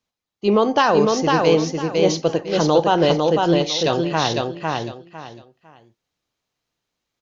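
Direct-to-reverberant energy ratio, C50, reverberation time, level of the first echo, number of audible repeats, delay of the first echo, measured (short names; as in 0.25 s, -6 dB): none, none, none, -3.0 dB, 3, 0.503 s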